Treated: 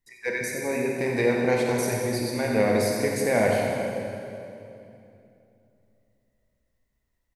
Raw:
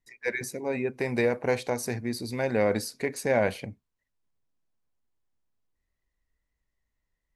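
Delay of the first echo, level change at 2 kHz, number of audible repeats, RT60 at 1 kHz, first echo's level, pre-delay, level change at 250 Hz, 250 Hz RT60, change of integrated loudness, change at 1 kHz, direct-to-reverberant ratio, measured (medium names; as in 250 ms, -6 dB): 90 ms, +3.5 dB, 1, 2.6 s, -10.0 dB, 23 ms, +5.0 dB, 3.4 s, +3.5 dB, +4.5 dB, -1.5 dB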